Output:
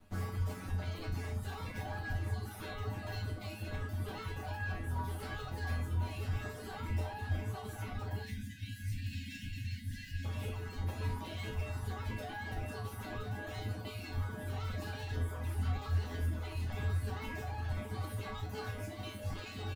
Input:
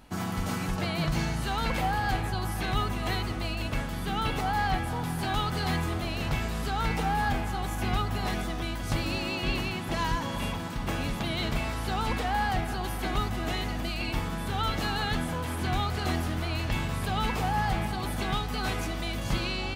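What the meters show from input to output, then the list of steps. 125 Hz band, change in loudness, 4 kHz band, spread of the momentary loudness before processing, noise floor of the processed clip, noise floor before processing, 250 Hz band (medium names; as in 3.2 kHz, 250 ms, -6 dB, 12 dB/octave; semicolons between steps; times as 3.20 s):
-5.0 dB, -9.5 dB, -15.5 dB, 4 LU, -46 dBFS, -33 dBFS, -13.5 dB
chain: comb filter that takes the minimum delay 9.6 ms; treble shelf 11 kHz +12 dB; flange 1.5 Hz, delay 2.8 ms, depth 6.6 ms, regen -81%; peak limiter -28.5 dBFS, peak gain reduction 7.5 dB; tilt EQ -2 dB/octave; on a send: delay 1022 ms -6 dB; on the sum: reverb removal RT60 1.5 s; spectral selection erased 8.22–10.25 s, 290–1500 Hz; feedback comb 87 Hz, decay 0.42 s, harmonics odd, mix 90%; trim +8.5 dB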